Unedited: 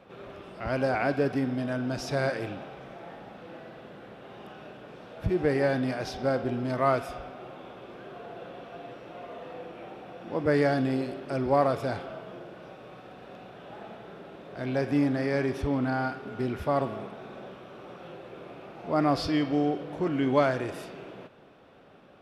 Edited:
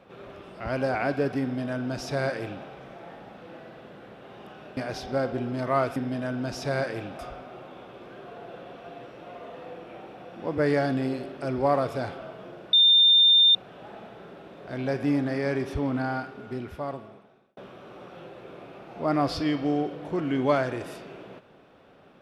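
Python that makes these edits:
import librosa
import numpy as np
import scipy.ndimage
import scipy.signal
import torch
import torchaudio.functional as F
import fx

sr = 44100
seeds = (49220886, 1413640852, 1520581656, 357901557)

y = fx.edit(x, sr, fx.duplicate(start_s=1.42, length_s=1.23, to_s=7.07),
    fx.cut(start_s=4.77, length_s=1.11),
    fx.bleep(start_s=12.61, length_s=0.82, hz=3610.0, db=-14.0),
    fx.fade_out_span(start_s=15.88, length_s=1.57), tone=tone)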